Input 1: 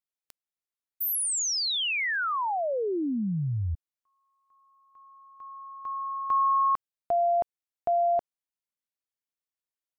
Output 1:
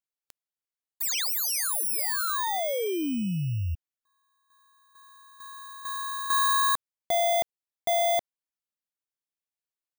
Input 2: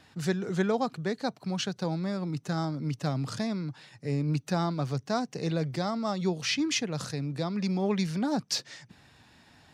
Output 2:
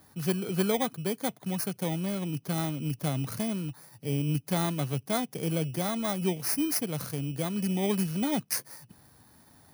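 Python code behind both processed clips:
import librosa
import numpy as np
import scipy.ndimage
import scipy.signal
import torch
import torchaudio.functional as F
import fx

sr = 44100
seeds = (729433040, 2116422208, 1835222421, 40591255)

y = fx.bit_reversed(x, sr, seeds[0], block=16)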